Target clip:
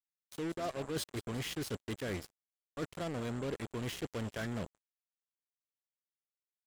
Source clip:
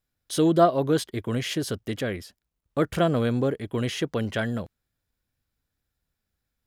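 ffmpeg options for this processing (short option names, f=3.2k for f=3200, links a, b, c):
-filter_complex "[0:a]agate=range=-9dB:threshold=-39dB:ratio=16:detection=peak,areverse,acompressor=threshold=-32dB:ratio=12,areverse,aeval=exprs='val(0)+0.000794*sin(2*PI*7500*n/s)':c=same,asplit=5[a][b][c][d][e];[b]adelay=179,afreqshift=-62,volume=-16.5dB[f];[c]adelay=358,afreqshift=-124,volume=-22.5dB[g];[d]adelay=537,afreqshift=-186,volume=-28.5dB[h];[e]adelay=716,afreqshift=-248,volume=-34.6dB[i];[a][f][g][h][i]amix=inputs=5:normalize=0,acrusher=bits=5:mix=0:aa=0.5,volume=-3.5dB"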